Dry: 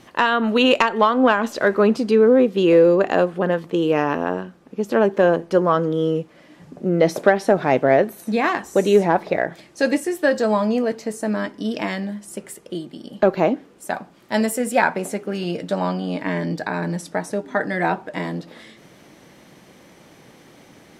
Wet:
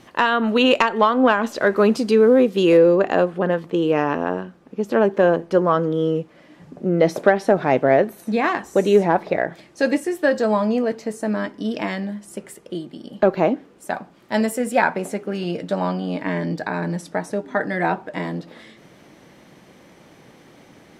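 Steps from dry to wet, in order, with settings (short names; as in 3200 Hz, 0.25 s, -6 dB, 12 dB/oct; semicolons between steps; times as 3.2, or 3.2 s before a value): high shelf 4400 Hz -2 dB, from 1.76 s +7 dB, from 2.77 s -5 dB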